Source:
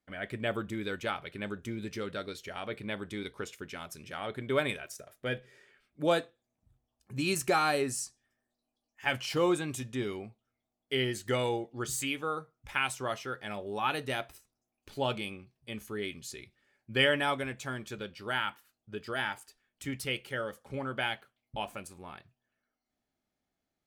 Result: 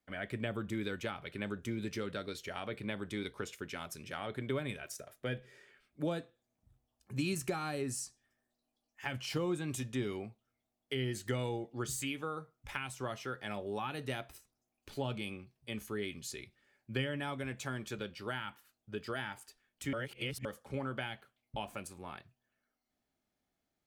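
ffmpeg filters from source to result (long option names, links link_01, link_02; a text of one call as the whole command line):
ffmpeg -i in.wav -filter_complex "[0:a]asplit=3[link_01][link_02][link_03];[link_01]atrim=end=19.932[link_04];[link_02]atrim=start=19.928:end=20.452,asetpts=PTS-STARTPTS,areverse[link_05];[link_03]atrim=start=20.448[link_06];[link_04][link_05]acrossfade=duration=0.004:curve1=hsin:curve2=hsin[link_07];[link_07][link_06]acrossfade=duration=0.004:curve1=hsin:curve2=hsin,acrossover=split=260[link_08][link_09];[link_09]acompressor=threshold=-36dB:ratio=10[link_10];[link_08][link_10]amix=inputs=2:normalize=0" out.wav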